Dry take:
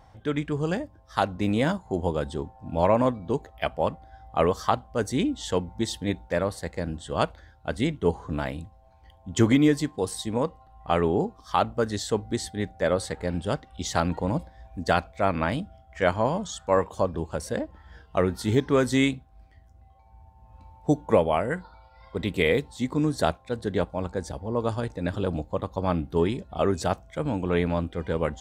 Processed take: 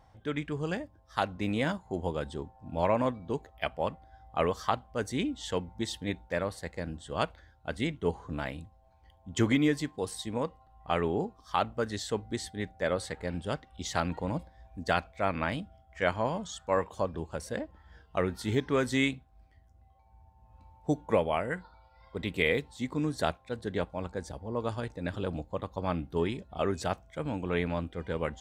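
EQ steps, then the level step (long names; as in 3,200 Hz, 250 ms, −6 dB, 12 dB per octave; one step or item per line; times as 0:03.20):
dynamic equaliser 2,300 Hz, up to +5 dB, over −43 dBFS, Q 0.94
−6.5 dB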